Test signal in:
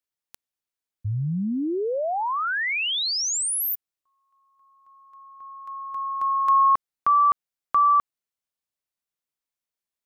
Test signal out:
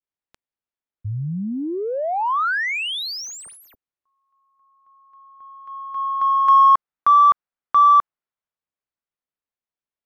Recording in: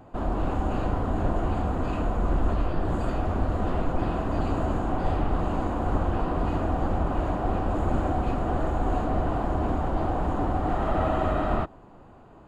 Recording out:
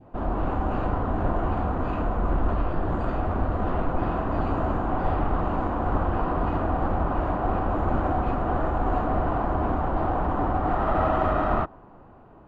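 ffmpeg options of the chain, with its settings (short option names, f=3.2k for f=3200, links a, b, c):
-af "adynamicsmooth=sensitivity=2:basefreq=3k,adynamicequalizer=threshold=0.0141:dfrequency=1200:dqfactor=0.92:tfrequency=1200:tqfactor=0.92:attack=5:release=100:ratio=0.375:range=3:mode=boostabove:tftype=bell"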